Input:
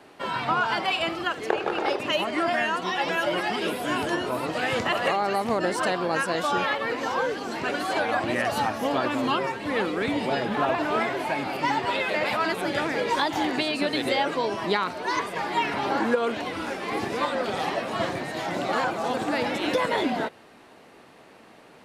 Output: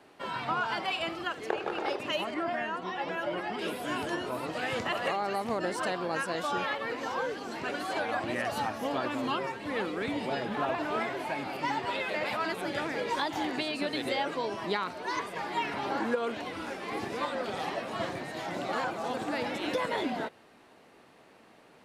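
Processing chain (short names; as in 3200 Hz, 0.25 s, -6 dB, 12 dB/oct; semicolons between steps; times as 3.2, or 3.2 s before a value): 2.34–3.59 high shelf 3100 Hz -12 dB; gain -6.5 dB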